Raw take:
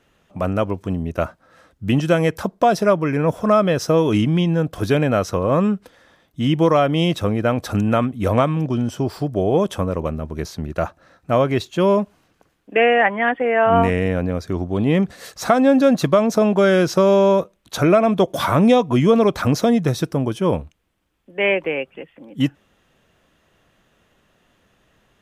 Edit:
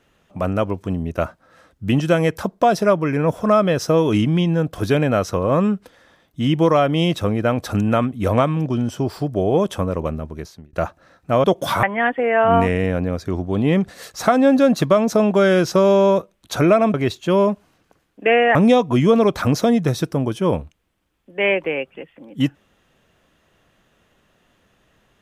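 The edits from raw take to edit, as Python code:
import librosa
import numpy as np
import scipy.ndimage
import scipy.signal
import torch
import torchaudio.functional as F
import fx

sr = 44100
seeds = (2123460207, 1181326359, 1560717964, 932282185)

y = fx.edit(x, sr, fx.fade_out_span(start_s=10.14, length_s=0.59),
    fx.swap(start_s=11.44, length_s=1.61, other_s=18.16, other_length_s=0.39), tone=tone)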